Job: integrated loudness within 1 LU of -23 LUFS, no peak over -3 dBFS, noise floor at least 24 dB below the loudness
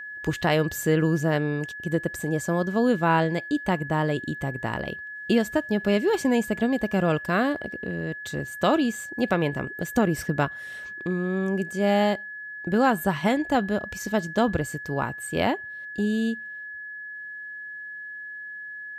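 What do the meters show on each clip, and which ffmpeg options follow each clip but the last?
steady tone 1700 Hz; tone level -35 dBFS; loudness -25.5 LUFS; peak -8.0 dBFS; loudness target -23.0 LUFS
-> -af "bandreject=f=1.7k:w=30"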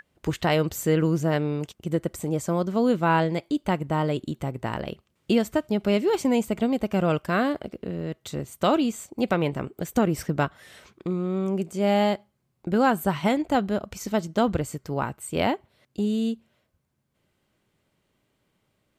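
steady tone none; loudness -25.5 LUFS; peak -8.5 dBFS; loudness target -23.0 LUFS
-> -af "volume=2.5dB"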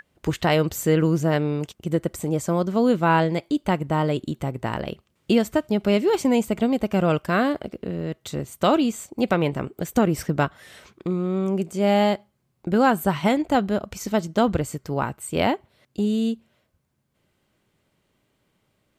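loudness -23.0 LUFS; peak -6.0 dBFS; noise floor -71 dBFS

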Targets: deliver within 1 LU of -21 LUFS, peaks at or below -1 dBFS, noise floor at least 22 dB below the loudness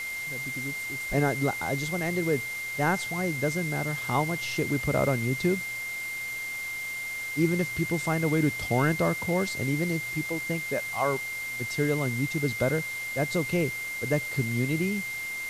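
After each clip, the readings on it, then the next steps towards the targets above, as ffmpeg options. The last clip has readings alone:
steady tone 2100 Hz; tone level -32 dBFS; noise floor -35 dBFS; noise floor target -50 dBFS; loudness -28.0 LUFS; peak -12.0 dBFS; loudness target -21.0 LUFS
-> -af "bandreject=f=2.1k:w=30"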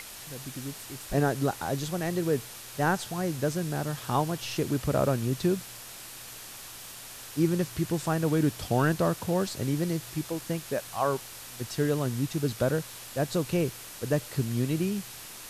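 steady tone none; noise floor -44 dBFS; noise floor target -52 dBFS
-> -af "afftdn=nr=8:nf=-44"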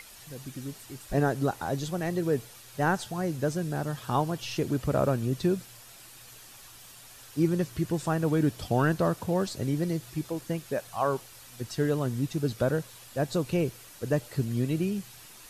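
noise floor -50 dBFS; noise floor target -52 dBFS
-> -af "afftdn=nr=6:nf=-50"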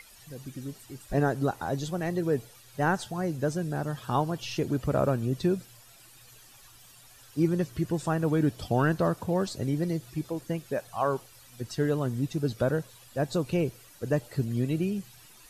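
noise floor -54 dBFS; loudness -29.5 LUFS; peak -12.5 dBFS; loudness target -21.0 LUFS
-> -af "volume=8.5dB"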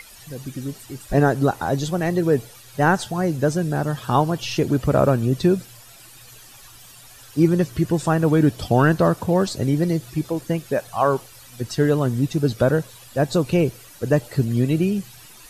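loudness -21.0 LUFS; peak -4.0 dBFS; noise floor -45 dBFS

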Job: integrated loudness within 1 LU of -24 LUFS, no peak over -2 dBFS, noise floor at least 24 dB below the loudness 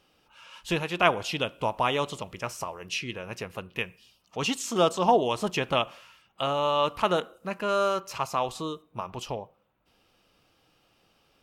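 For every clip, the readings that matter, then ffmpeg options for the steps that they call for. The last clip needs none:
loudness -28.5 LUFS; peak -4.0 dBFS; loudness target -24.0 LUFS
-> -af "volume=4.5dB,alimiter=limit=-2dB:level=0:latency=1"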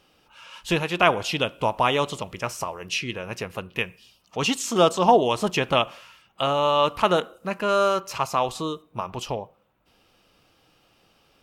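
loudness -24.0 LUFS; peak -2.0 dBFS; noise floor -63 dBFS

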